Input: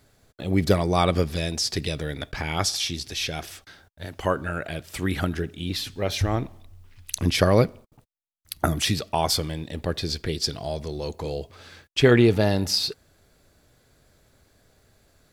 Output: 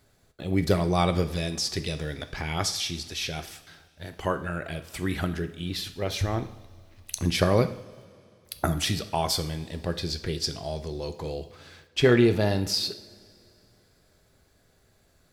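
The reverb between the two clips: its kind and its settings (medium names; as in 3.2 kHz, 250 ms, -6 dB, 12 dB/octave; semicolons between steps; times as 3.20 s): two-slope reverb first 0.58 s, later 2.8 s, from -18 dB, DRR 9 dB; trim -3.5 dB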